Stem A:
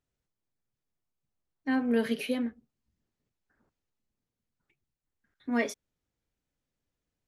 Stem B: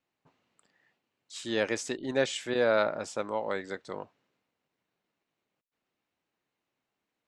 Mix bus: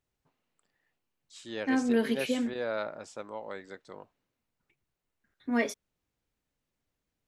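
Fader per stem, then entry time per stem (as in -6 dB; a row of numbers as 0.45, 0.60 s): +0.5, -8.0 dB; 0.00, 0.00 s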